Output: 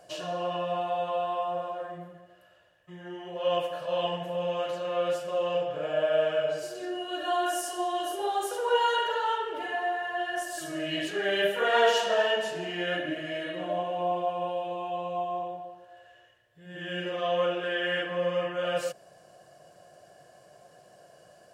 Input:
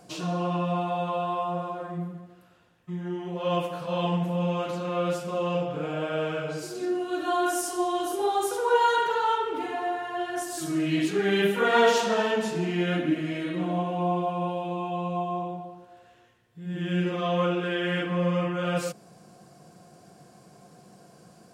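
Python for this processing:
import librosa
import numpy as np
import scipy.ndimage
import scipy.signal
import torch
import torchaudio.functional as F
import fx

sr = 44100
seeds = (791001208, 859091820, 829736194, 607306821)

y = fx.peak_eq(x, sr, hz=210.0, db=-12.5, octaves=1.1)
y = fx.small_body(y, sr, hz=(600.0, 1700.0, 2900.0), ring_ms=50, db=17)
y = y * 10.0 ** (-4.0 / 20.0)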